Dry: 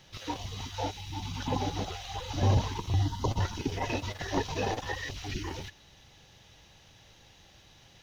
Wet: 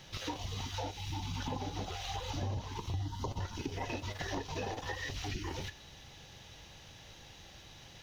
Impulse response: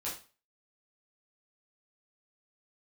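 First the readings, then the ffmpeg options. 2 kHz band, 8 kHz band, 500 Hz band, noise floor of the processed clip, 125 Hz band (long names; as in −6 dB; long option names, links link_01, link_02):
−4.0 dB, can't be measured, −7.0 dB, −54 dBFS, −7.5 dB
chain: -filter_complex "[0:a]acompressor=threshold=-39dB:ratio=6,asplit=2[link_01][link_02];[1:a]atrim=start_sample=2205[link_03];[link_02][link_03]afir=irnorm=-1:irlink=0,volume=-14dB[link_04];[link_01][link_04]amix=inputs=2:normalize=0,volume=2.5dB"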